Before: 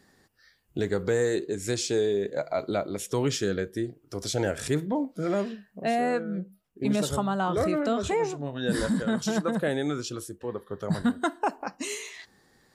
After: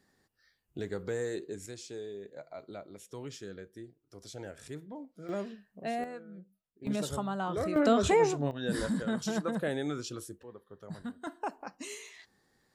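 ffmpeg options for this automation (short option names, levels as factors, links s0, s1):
-af "asetnsamples=n=441:p=0,asendcmd='1.66 volume volume -16.5dB;5.29 volume volume -8.5dB;6.04 volume volume -16.5dB;6.87 volume volume -7dB;7.76 volume volume 2dB;8.51 volume volume -5.5dB;10.43 volume volume -15.5dB;11.27 volume volume -9dB',volume=0.335"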